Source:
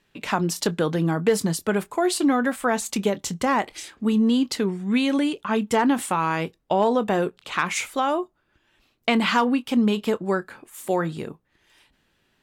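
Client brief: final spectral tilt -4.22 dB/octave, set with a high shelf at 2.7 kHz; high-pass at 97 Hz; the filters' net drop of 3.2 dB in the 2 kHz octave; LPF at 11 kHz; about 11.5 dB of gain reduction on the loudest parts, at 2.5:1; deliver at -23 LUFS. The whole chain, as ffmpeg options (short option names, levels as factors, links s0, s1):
-af "highpass=97,lowpass=11000,equalizer=f=2000:t=o:g=-5.5,highshelf=f=2700:g=3,acompressor=threshold=0.02:ratio=2.5,volume=3.35"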